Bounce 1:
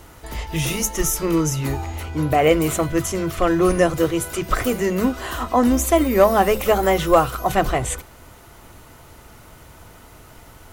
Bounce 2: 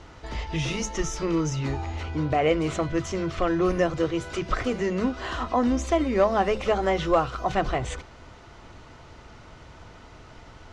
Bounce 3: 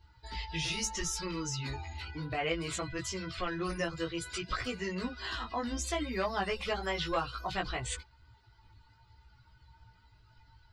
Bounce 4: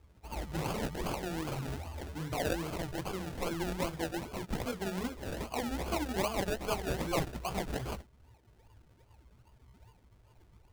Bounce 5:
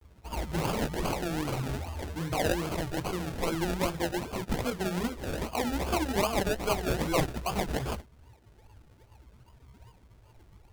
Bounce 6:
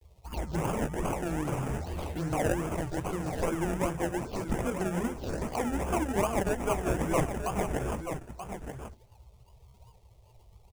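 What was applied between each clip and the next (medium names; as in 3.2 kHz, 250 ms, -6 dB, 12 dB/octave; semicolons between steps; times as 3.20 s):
low-pass 5.8 kHz 24 dB/octave; in parallel at +1.5 dB: compression, threshold -26 dBFS, peak gain reduction 16 dB; on the sum: trim -8.5 dB
expander on every frequency bin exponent 2; chorus 0.63 Hz, delay 16 ms, depth 2.1 ms; spectrum-flattening compressor 2:1; trim -3.5 dB
decimation with a swept rate 33×, swing 60% 2.5 Hz
vibrato 0.54 Hz 70 cents; trim +5 dB
touch-sensitive phaser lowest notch 210 Hz, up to 4.2 kHz, full sweep at -29 dBFS; delay 932 ms -8.5 dB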